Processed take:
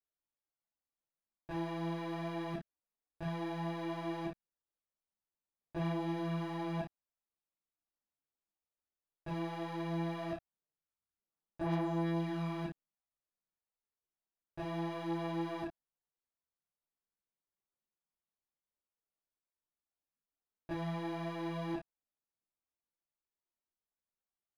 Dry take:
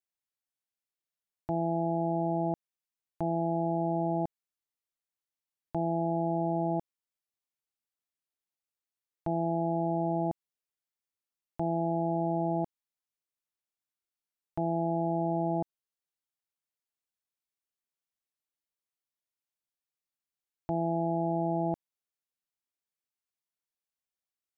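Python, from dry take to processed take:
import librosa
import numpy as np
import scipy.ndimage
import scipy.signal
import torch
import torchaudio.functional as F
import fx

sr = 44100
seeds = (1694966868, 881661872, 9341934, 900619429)

y = scipy.signal.sosfilt(scipy.signal.butter(2, 1200.0, 'lowpass', fs=sr, output='sos'), x)
y = np.clip(10.0 ** (34.0 / 20.0) * y, -1.0, 1.0) / 10.0 ** (34.0 / 20.0)
y = fx.room_early_taps(y, sr, ms=(29, 56), db=(-4.0, -7.0))
y = fx.chorus_voices(y, sr, voices=6, hz=0.71, base_ms=17, depth_ms=3.3, mix_pct=60)
y = y * 10.0 ** (1.0 / 20.0)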